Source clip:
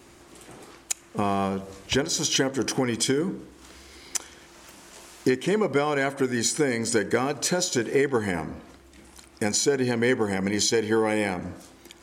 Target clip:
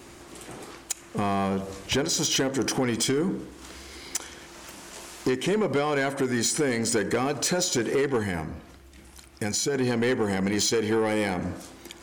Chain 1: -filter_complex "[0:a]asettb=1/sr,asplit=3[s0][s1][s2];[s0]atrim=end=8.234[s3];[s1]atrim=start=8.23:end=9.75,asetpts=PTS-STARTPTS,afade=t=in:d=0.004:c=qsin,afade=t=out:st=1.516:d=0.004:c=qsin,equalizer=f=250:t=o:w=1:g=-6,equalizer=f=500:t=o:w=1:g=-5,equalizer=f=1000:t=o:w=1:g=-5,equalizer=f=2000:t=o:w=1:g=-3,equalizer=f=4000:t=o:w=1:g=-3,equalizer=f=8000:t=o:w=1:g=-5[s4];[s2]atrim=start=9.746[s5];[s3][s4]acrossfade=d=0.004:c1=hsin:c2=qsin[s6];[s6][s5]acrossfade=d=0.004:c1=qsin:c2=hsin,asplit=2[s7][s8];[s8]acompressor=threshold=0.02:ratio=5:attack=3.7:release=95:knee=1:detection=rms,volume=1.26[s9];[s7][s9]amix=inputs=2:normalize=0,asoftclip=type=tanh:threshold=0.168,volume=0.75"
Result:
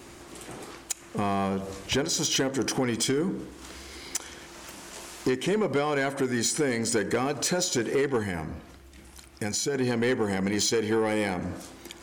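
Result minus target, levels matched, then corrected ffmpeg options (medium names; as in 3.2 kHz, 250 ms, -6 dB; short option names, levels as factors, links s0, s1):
compression: peak gain reduction +6 dB
-filter_complex "[0:a]asettb=1/sr,asplit=3[s0][s1][s2];[s0]atrim=end=8.234[s3];[s1]atrim=start=8.23:end=9.75,asetpts=PTS-STARTPTS,afade=t=in:d=0.004:c=qsin,afade=t=out:st=1.516:d=0.004:c=qsin,equalizer=f=250:t=o:w=1:g=-6,equalizer=f=500:t=o:w=1:g=-5,equalizer=f=1000:t=o:w=1:g=-5,equalizer=f=2000:t=o:w=1:g=-3,equalizer=f=4000:t=o:w=1:g=-3,equalizer=f=8000:t=o:w=1:g=-5[s4];[s2]atrim=start=9.746[s5];[s3][s4]acrossfade=d=0.004:c1=hsin:c2=qsin[s6];[s6][s5]acrossfade=d=0.004:c1=qsin:c2=hsin,asplit=2[s7][s8];[s8]acompressor=threshold=0.0473:ratio=5:attack=3.7:release=95:knee=1:detection=rms,volume=1.26[s9];[s7][s9]amix=inputs=2:normalize=0,asoftclip=type=tanh:threshold=0.168,volume=0.75"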